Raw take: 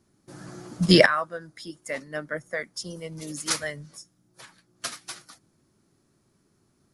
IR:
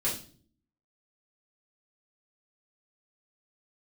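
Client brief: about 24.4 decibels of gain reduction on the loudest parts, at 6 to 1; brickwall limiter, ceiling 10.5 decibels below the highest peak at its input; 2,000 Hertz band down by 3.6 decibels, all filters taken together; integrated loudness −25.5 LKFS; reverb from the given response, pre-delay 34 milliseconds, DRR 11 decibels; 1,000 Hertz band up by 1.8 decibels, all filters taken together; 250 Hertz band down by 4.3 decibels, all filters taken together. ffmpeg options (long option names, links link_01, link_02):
-filter_complex "[0:a]equalizer=frequency=250:width_type=o:gain=-8,equalizer=frequency=1000:width_type=o:gain=5,equalizer=frequency=2000:width_type=o:gain=-6,acompressor=threshold=-39dB:ratio=6,alimiter=level_in=10dB:limit=-24dB:level=0:latency=1,volume=-10dB,asplit=2[link_01][link_02];[1:a]atrim=start_sample=2205,adelay=34[link_03];[link_02][link_03]afir=irnorm=-1:irlink=0,volume=-18dB[link_04];[link_01][link_04]amix=inputs=2:normalize=0,volume=20.5dB"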